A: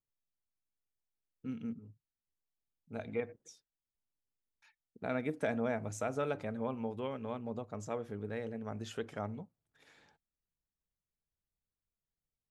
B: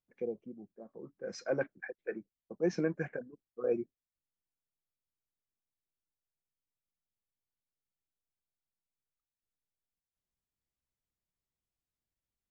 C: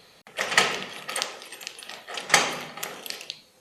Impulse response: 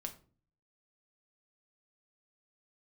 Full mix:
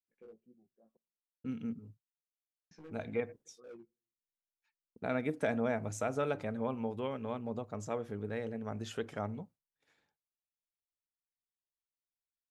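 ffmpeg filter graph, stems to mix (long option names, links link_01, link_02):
-filter_complex "[0:a]agate=range=-33dB:threshold=-54dB:ratio=3:detection=peak,volume=1.5dB[link_01];[1:a]asoftclip=type=hard:threshold=-30.5dB,flanger=delay=16.5:depth=2.5:speed=1.9,volume=-15.5dB,asplit=3[link_02][link_03][link_04];[link_02]atrim=end=0.97,asetpts=PTS-STARTPTS,afade=type=out:start_time=0.966:duration=0.004:curve=hsin[link_05];[link_03]atrim=start=0.97:end=2.71,asetpts=PTS-STARTPTS,volume=0[link_06];[link_04]atrim=start=2.71,asetpts=PTS-STARTPTS,afade=type=in:duration=0.004:curve=hsin[link_07];[link_05][link_06][link_07]concat=n=3:v=0:a=1,asplit=2[link_08][link_09];[link_09]volume=-18dB[link_10];[3:a]atrim=start_sample=2205[link_11];[link_10][link_11]afir=irnorm=-1:irlink=0[link_12];[link_01][link_08][link_12]amix=inputs=3:normalize=0"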